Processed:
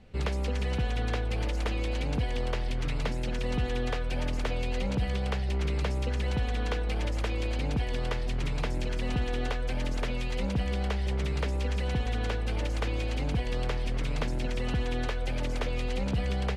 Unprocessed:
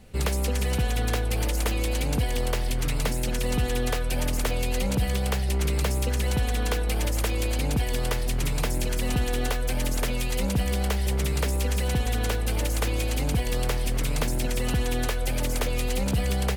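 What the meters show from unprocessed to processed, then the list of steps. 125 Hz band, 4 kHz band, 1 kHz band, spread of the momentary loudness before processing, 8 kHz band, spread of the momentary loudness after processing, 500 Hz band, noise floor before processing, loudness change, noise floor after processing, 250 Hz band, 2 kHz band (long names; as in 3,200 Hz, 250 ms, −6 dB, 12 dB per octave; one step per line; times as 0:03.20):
−4.0 dB, −6.0 dB, −4.0 dB, 2 LU, −16.0 dB, 2 LU, −4.0 dB, −26 dBFS, −4.5 dB, −30 dBFS, −4.0 dB, −4.5 dB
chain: low-pass filter 4,100 Hz 12 dB per octave
level −4 dB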